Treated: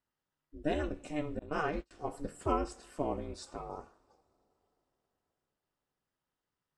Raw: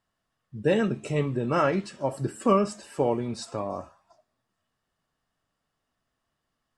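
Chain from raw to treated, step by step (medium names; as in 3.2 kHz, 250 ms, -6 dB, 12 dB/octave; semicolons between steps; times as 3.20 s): two-slope reverb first 0.55 s, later 4.4 s, from -18 dB, DRR 17.5 dB; ring modulator 150 Hz; 1.39–1.91 s: gate -29 dBFS, range -31 dB; trim -7 dB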